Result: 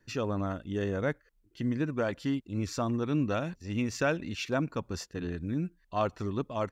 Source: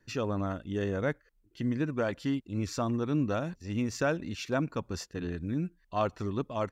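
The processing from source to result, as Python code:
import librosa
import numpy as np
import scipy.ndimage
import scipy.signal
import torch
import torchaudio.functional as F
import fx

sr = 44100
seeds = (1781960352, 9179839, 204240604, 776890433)

y = fx.dynamic_eq(x, sr, hz=2600.0, q=1.3, threshold_db=-49.0, ratio=4.0, max_db=5, at=(3.01, 4.49))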